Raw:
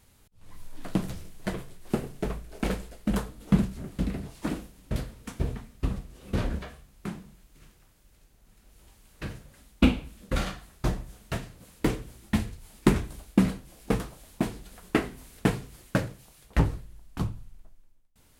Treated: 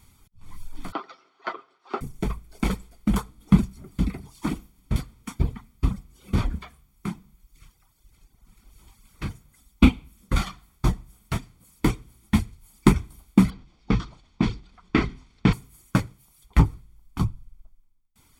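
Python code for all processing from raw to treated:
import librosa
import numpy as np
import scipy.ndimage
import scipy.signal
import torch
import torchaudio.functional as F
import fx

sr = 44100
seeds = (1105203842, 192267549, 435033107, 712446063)

y = fx.chain(x, sr, fx.cabinet(low_hz=370.0, low_slope=24, high_hz=4200.0, hz=(720.0, 1300.0, 2300.0, 3500.0), db=(4, 10, -5, -4)),
    fx.comb(ms=7.5, depth=0.45),
    fx.band_squash(depth_pct=40), at=(0.92, 2.01))
y = fx.chain(y, sr, fx.dynamic_eq(hz=770.0, q=1.2, threshold_db=-43.0, ratio=4.0, max_db=-6),
    fx.lowpass(hz=5200.0, slope=24),
    fx.sustainer(db_per_s=93.0), at=(13.5, 15.53))
y = fx.dereverb_blind(y, sr, rt60_s=1.4)
y = y + 0.6 * np.pad(y, (int(0.9 * sr / 1000.0), 0))[:len(y)]
y = y * 10.0 ** (2.5 / 20.0)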